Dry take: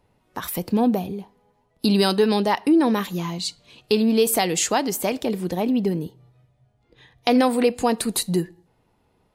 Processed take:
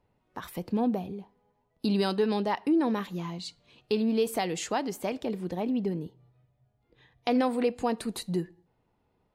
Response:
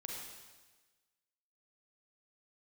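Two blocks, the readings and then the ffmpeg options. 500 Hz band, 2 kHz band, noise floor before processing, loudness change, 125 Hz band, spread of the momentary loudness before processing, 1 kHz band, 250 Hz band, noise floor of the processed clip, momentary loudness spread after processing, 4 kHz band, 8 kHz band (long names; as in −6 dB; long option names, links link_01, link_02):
−7.5 dB, −9.0 dB, −66 dBFS, −8.0 dB, −7.5 dB, 11 LU, −8.0 dB, −7.5 dB, −74 dBFS, 14 LU, −11.5 dB, −15.5 dB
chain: -af "lowpass=frequency=3200:poles=1,volume=-7.5dB"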